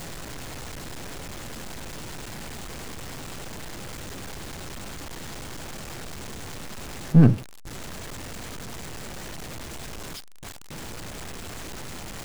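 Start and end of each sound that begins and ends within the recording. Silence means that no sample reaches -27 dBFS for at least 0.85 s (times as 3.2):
7.14–7.36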